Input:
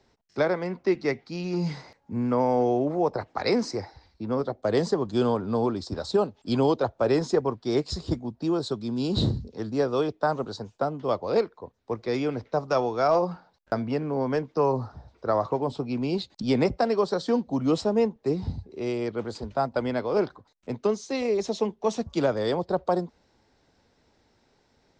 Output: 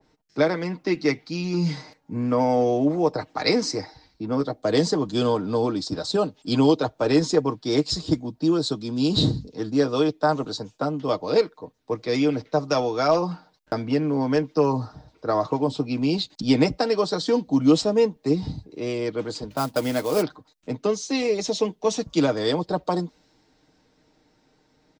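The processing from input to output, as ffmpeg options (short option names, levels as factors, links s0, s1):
-filter_complex "[0:a]asplit=3[s0][s1][s2];[s0]afade=t=out:st=19.5:d=0.02[s3];[s1]acrusher=bits=5:mode=log:mix=0:aa=0.000001,afade=t=in:st=19.5:d=0.02,afade=t=out:st=20.21:d=0.02[s4];[s2]afade=t=in:st=20.21:d=0.02[s5];[s3][s4][s5]amix=inputs=3:normalize=0,equalizer=f=260:w=2.3:g=6.5,aecho=1:1:6.5:0.56,adynamicequalizer=threshold=0.00794:dfrequency=2200:dqfactor=0.7:tfrequency=2200:tqfactor=0.7:attack=5:release=100:ratio=0.375:range=4:mode=boostabove:tftype=highshelf"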